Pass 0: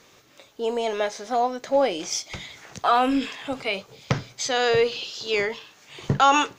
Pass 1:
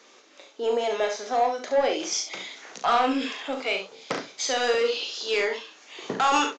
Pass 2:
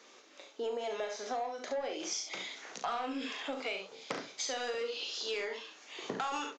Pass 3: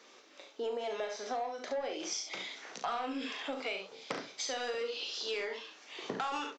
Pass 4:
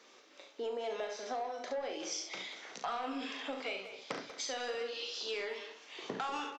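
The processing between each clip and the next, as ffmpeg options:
-af "highpass=f=260:w=0.5412,highpass=f=260:w=1.3066,aresample=16000,asoftclip=type=tanh:threshold=-17dB,aresample=44100,aecho=1:1:38|69:0.473|0.398"
-af "acompressor=threshold=-30dB:ratio=6,volume=-4dB"
-af "bandreject=f=6.7k:w=11"
-filter_complex "[0:a]asplit=2[a][b];[b]adelay=190,highpass=300,lowpass=3.4k,asoftclip=type=hard:threshold=-30.5dB,volume=-10dB[c];[a][c]amix=inputs=2:normalize=0,volume=-2dB"

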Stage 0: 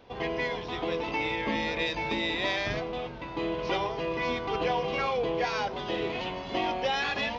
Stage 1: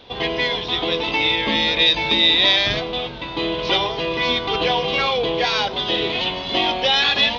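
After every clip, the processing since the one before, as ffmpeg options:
-af "equalizer=f=3.6k:w=1.9:g=14,volume=7dB"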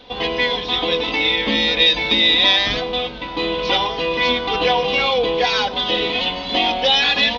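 -af "aecho=1:1:4:0.55"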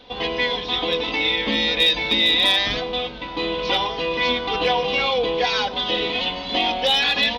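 -af "asoftclip=type=hard:threshold=-7dB,volume=-3dB"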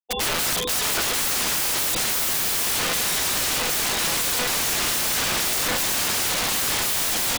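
-filter_complex "[0:a]afftfilt=real='re*gte(hypot(re,im),0.0631)':imag='im*gte(hypot(re,im),0.0631)':win_size=1024:overlap=0.75,asplit=2[a][b];[b]adelay=835,lowpass=f=4.9k:p=1,volume=-8dB,asplit=2[c][d];[d]adelay=835,lowpass=f=4.9k:p=1,volume=0.54,asplit=2[e][f];[f]adelay=835,lowpass=f=4.9k:p=1,volume=0.54,asplit=2[g][h];[h]adelay=835,lowpass=f=4.9k:p=1,volume=0.54,asplit=2[i][j];[j]adelay=835,lowpass=f=4.9k:p=1,volume=0.54,asplit=2[k][l];[l]adelay=835,lowpass=f=4.9k:p=1,volume=0.54[m];[a][c][e][g][i][k][m]amix=inputs=7:normalize=0,aeval=exprs='(mod(15.8*val(0)+1,2)-1)/15.8':c=same,volume=5.5dB"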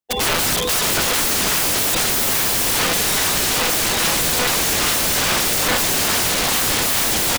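-filter_complex "[0:a]asplit=2[a][b];[b]acrusher=samples=21:mix=1:aa=0.000001:lfo=1:lforange=33.6:lforate=2.4,volume=-10.5dB[c];[a][c]amix=inputs=2:normalize=0,aecho=1:1:430:0.178,volume=4dB"

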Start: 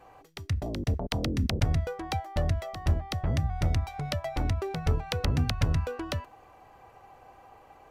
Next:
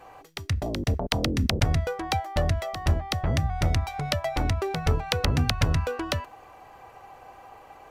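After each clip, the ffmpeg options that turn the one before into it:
-af "lowshelf=f=450:g=-5,volume=7dB"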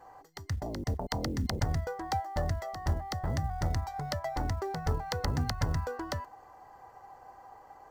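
-af "superequalizer=9b=1.58:12b=0.251:13b=0.398:16b=0.501,acrusher=bits=9:mode=log:mix=0:aa=0.000001,volume=-7dB"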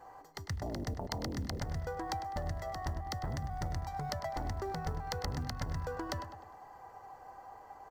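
-filter_complex "[0:a]acompressor=threshold=-34dB:ratio=6,asplit=2[a][b];[b]adelay=101,lowpass=f=4.3k:p=1,volume=-10dB,asplit=2[c][d];[d]adelay=101,lowpass=f=4.3k:p=1,volume=0.49,asplit=2[e][f];[f]adelay=101,lowpass=f=4.3k:p=1,volume=0.49,asplit=2[g][h];[h]adelay=101,lowpass=f=4.3k:p=1,volume=0.49,asplit=2[i][j];[j]adelay=101,lowpass=f=4.3k:p=1,volume=0.49[k];[a][c][e][g][i][k]amix=inputs=6:normalize=0"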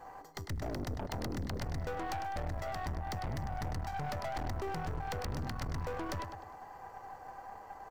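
-af "aeval=exprs='(tanh(100*val(0)+0.6)-tanh(0.6))/100':c=same,volume=6dB"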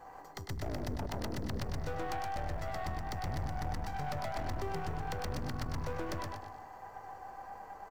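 -af "aecho=1:1:121|242|363|484:0.668|0.194|0.0562|0.0163,volume=-1.5dB"

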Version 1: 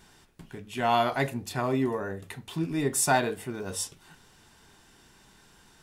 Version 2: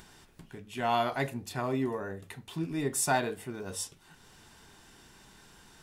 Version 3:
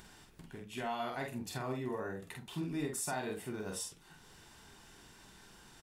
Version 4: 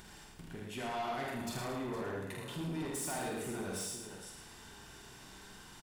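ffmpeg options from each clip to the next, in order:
-af "acompressor=mode=upward:threshold=-44dB:ratio=2.5,volume=-4dB"
-filter_complex "[0:a]alimiter=level_in=2.5dB:limit=-24dB:level=0:latency=1:release=171,volume=-2.5dB,asplit=2[a][b];[b]adelay=47,volume=-4dB[c];[a][c]amix=inputs=2:normalize=0,volume=-3dB"
-filter_complex "[0:a]asplit=2[a][b];[b]aecho=0:1:79|462:0.668|0.237[c];[a][c]amix=inputs=2:normalize=0,asoftclip=type=tanh:threshold=-37.5dB,asplit=2[d][e];[e]aecho=0:1:109|218|327|436:0.447|0.156|0.0547|0.0192[f];[d][f]amix=inputs=2:normalize=0,volume=2dB"

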